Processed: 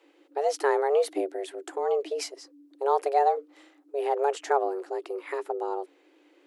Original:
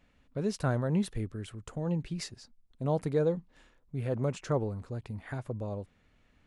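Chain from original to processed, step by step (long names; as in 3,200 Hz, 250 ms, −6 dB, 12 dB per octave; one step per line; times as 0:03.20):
frequency shifter +280 Hz
level +5 dB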